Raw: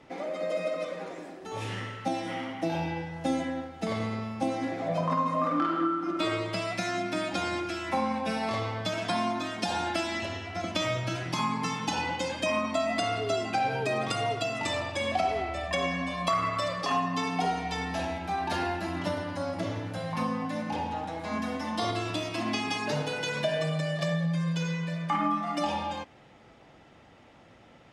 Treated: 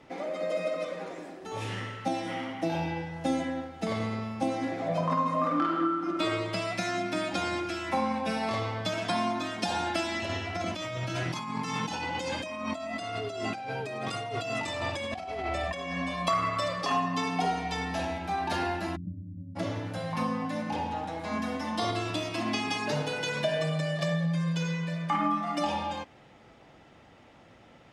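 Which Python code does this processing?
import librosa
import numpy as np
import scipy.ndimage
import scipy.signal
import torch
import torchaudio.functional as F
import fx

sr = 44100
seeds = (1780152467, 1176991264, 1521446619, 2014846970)

y = fx.over_compress(x, sr, threshold_db=-34.0, ratio=-1.0, at=(10.29, 15.98))
y = fx.cheby2_lowpass(y, sr, hz=1200.0, order=4, stop_db=80, at=(18.95, 19.55), fade=0.02)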